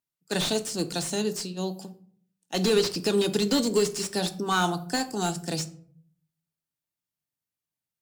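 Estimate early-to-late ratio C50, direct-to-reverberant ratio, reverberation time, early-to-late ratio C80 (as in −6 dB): 15.5 dB, 7.0 dB, 0.55 s, 19.5 dB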